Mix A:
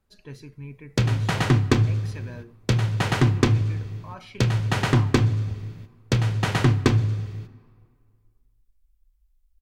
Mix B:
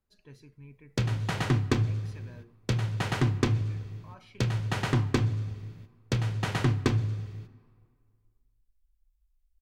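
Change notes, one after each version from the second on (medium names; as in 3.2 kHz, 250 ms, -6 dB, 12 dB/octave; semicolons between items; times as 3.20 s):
speech -10.5 dB; background -6.5 dB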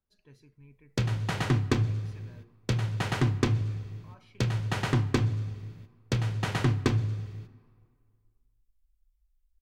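speech -5.0 dB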